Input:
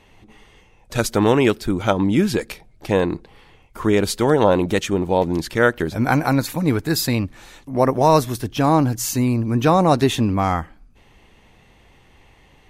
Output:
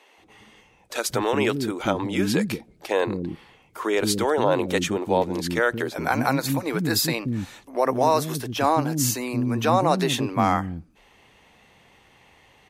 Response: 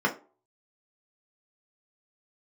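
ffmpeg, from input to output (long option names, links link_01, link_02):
-filter_complex "[0:a]alimiter=limit=-8dB:level=0:latency=1:release=92,highpass=frequency=220:poles=1,acrossover=split=310[link_01][link_02];[link_01]adelay=180[link_03];[link_03][link_02]amix=inputs=2:normalize=0"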